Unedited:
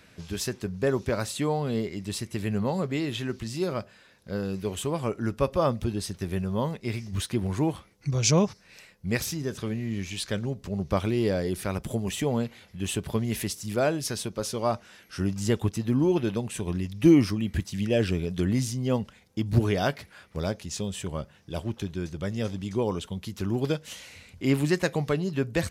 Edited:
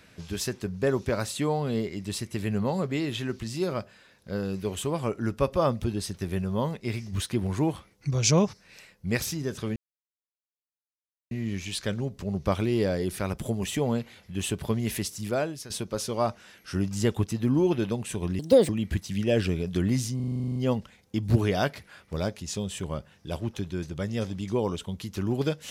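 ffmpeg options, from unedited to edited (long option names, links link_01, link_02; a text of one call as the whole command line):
ffmpeg -i in.wav -filter_complex "[0:a]asplit=15[link_01][link_02][link_03][link_04][link_05][link_06][link_07][link_08][link_09][link_10][link_11][link_12][link_13][link_14][link_15];[link_01]atrim=end=9.76,asetpts=PTS-STARTPTS,afade=type=out:start_time=9.756:duration=0.004:curve=hsin,apad=pad_dur=1.55[link_16];[link_02]atrim=start=9.76:end=14.15,asetpts=PTS-STARTPTS,afade=type=in:duration=0.004:curve=hsin,afade=type=out:start_time=3.89:duration=0.5:silence=0.211349[link_17];[link_03]atrim=start=14.15:end=16.844,asetpts=PTS-STARTPTS,afade=type=in:duration=0.004:curve=hsin:silence=0.211349[link_18];[link_04]atrim=start=16.84:end=17.32,asetpts=PTS-STARTPTS,asetrate=71001,aresample=44100[link_19];[link_05]atrim=start=17.316:end=18.832[link_20];[link_06]atrim=start=18.788:end=18.832[link_21];[link_07]atrim=start=18.788:end=18.832[link_22];[link_08]atrim=start=18.788:end=18.832[link_23];[link_09]atrim=start=18.788:end=18.832[link_24];[link_10]atrim=start=18.788:end=18.832[link_25];[link_11]atrim=start=18.788:end=18.832[link_26];[link_12]atrim=start=18.788:end=18.832[link_27];[link_13]atrim=start=18.788:end=18.832[link_28];[link_14]atrim=start=18.788:end=18.832[link_29];[link_15]atrim=start=18.788[link_30];[link_16][link_17][link_18]concat=n=3:v=0:a=1[link_31];[link_31][link_19]acrossfade=duration=0.004:curve1=hsin:curve2=hsin[link_32];[link_32][link_20]acrossfade=duration=0.004:curve1=hsin:curve2=hsin[link_33];[link_33][link_21]acrossfade=duration=0.004:curve1=hsin:curve2=hsin[link_34];[link_34][link_22]acrossfade=duration=0.004:curve1=hsin:curve2=hsin[link_35];[link_35][link_23]acrossfade=duration=0.004:curve1=hsin:curve2=hsin[link_36];[link_36][link_24]acrossfade=duration=0.004:curve1=hsin:curve2=hsin[link_37];[link_37][link_25]acrossfade=duration=0.004:curve1=hsin:curve2=hsin[link_38];[link_38][link_26]acrossfade=duration=0.004:curve1=hsin:curve2=hsin[link_39];[link_39][link_27]acrossfade=duration=0.004:curve1=hsin:curve2=hsin[link_40];[link_40][link_28]acrossfade=duration=0.004:curve1=hsin:curve2=hsin[link_41];[link_41][link_29]acrossfade=duration=0.004:curve1=hsin:curve2=hsin[link_42];[link_42][link_30]acrossfade=duration=0.004:curve1=hsin:curve2=hsin" out.wav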